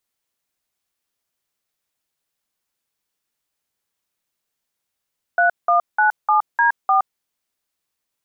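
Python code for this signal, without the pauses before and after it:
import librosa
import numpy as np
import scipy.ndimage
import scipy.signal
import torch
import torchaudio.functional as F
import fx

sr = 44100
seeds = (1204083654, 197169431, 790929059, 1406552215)

y = fx.dtmf(sr, digits='3197D4', tone_ms=118, gap_ms=184, level_db=-15.0)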